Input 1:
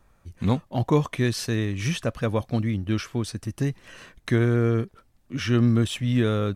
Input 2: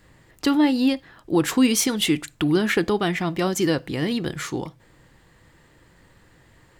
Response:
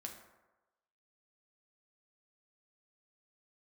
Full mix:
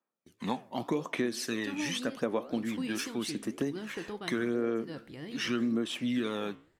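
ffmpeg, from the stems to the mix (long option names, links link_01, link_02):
-filter_complex "[0:a]aphaser=in_gain=1:out_gain=1:delay=1.2:decay=0.55:speed=0.85:type=sinusoidal,highpass=frequency=230:width=0.5412,highpass=frequency=230:width=1.3066,agate=range=-25dB:threshold=-56dB:ratio=16:detection=peak,volume=0.5dB,asplit=3[link_01][link_02][link_03];[link_02]volume=-18dB[link_04];[1:a]adelay=1200,volume=-14dB[link_05];[link_03]apad=whole_len=352721[link_06];[link_05][link_06]sidechaincompress=threshold=-28dB:ratio=8:attack=16:release=122[link_07];[2:a]atrim=start_sample=2205[link_08];[link_04][link_08]afir=irnorm=-1:irlink=0[link_09];[link_01][link_07][link_09]amix=inputs=3:normalize=0,flanger=delay=8.5:depth=8.3:regen=-80:speed=1.9:shape=sinusoidal,acompressor=threshold=-27dB:ratio=6"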